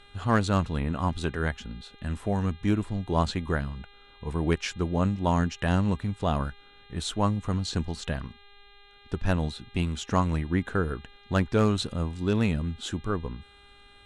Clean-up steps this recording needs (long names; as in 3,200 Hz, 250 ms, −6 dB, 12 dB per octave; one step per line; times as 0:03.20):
clipped peaks rebuilt −12 dBFS
hum removal 404.5 Hz, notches 10